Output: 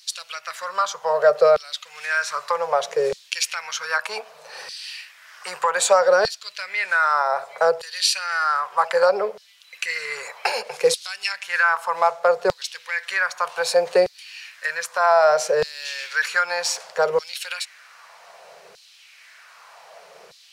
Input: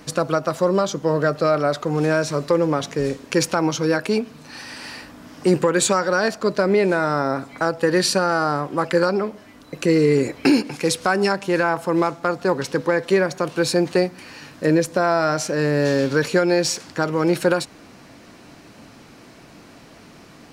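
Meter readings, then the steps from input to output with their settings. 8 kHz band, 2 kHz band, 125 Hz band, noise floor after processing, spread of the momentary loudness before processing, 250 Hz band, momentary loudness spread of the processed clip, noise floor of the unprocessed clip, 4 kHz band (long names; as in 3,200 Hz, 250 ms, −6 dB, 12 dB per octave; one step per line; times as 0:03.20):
−0.5 dB, +2.5 dB, below −20 dB, −51 dBFS, 7 LU, −23.5 dB, 15 LU, −46 dBFS, +1.5 dB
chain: auto-filter high-pass saw down 0.64 Hz 370–4,300 Hz
Chebyshev band-stop filter 170–480 Hz, order 2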